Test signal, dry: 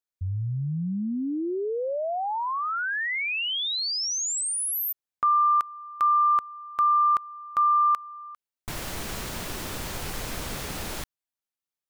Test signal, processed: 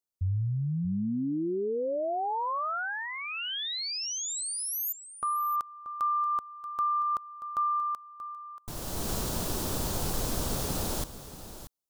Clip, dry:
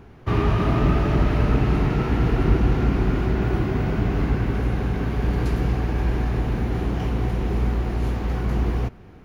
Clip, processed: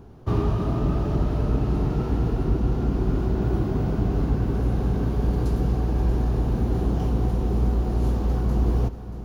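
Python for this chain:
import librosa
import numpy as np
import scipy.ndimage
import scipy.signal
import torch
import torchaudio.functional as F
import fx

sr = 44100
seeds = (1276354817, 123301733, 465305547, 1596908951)

p1 = fx.peak_eq(x, sr, hz=2100.0, db=-13.5, octaves=1.2)
p2 = fx.rider(p1, sr, range_db=5, speed_s=0.5)
p3 = p2 + fx.echo_single(p2, sr, ms=632, db=-13.0, dry=0)
y = p3 * 10.0 ** (-1.5 / 20.0)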